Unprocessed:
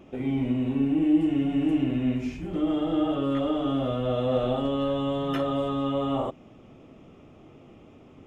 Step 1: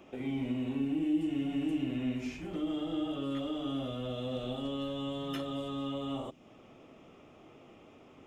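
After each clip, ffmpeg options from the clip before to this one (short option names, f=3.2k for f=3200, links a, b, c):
-filter_complex "[0:a]lowshelf=f=300:g=-11.5,acrossover=split=330|3000[a][b][c];[b]acompressor=threshold=-43dB:ratio=6[d];[a][d][c]amix=inputs=3:normalize=0"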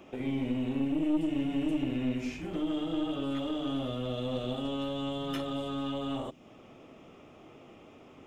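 -af "aeval=exprs='(tanh(20*val(0)+0.45)-tanh(0.45))/20':c=same,volume=4.5dB"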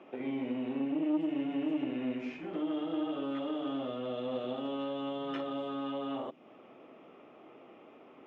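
-af "highpass=270,lowpass=2.4k"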